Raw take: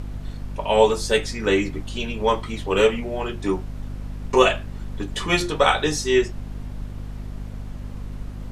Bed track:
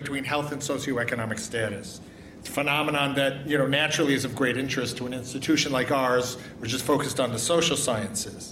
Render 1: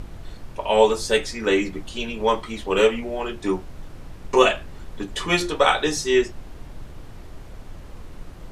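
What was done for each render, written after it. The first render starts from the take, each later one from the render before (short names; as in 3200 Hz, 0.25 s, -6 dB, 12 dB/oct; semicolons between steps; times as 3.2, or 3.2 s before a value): notches 50/100/150/200/250 Hz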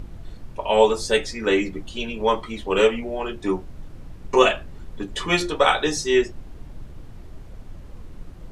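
denoiser 6 dB, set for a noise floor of -40 dBFS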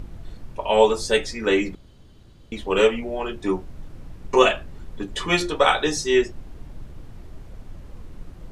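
1.75–2.52 room tone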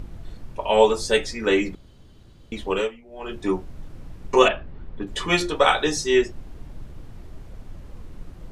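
2.7–3.34 dip -19.5 dB, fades 0.31 s quadratic; 4.48–5.07 air absorption 280 m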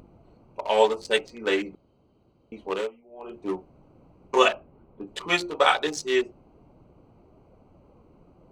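Wiener smoothing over 25 samples; HPF 550 Hz 6 dB/oct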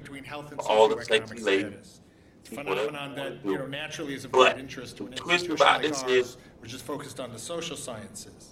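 add bed track -11.5 dB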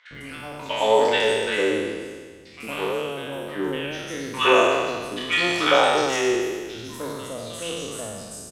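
spectral trails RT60 1.64 s; three bands offset in time mids, lows, highs 0.11/0.15 s, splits 1200/5300 Hz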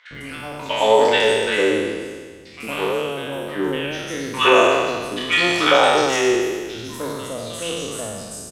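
gain +4 dB; limiter -3 dBFS, peak gain reduction 2 dB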